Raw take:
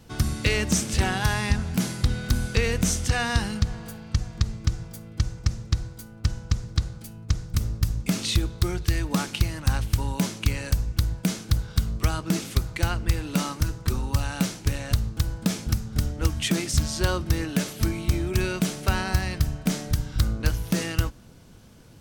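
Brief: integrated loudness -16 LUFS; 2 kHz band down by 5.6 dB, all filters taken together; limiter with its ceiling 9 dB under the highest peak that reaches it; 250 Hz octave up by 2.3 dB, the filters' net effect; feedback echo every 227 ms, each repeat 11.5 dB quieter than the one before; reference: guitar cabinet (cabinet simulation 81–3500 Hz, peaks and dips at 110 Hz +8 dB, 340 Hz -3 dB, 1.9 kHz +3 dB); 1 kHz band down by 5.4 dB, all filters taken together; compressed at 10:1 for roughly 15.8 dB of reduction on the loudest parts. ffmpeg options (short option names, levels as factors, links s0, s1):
-af "equalizer=f=250:t=o:g=4,equalizer=f=1000:t=o:g=-6,equalizer=f=2000:t=o:g=-7,acompressor=threshold=0.0224:ratio=10,alimiter=level_in=1.33:limit=0.0631:level=0:latency=1,volume=0.75,highpass=81,equalizer=f=110:t=q:w=4:g=8,equalizer=f=340:t=q:w=4:g=-3,equalizer=f=1900:t=q:w=4:g=3,lowpass=f=3500:w=0.5412,lowpass=f=3500:w=1.3066,aecho=1:1:227|454|681:0.266|0.0718|0.0194,volume=16.8"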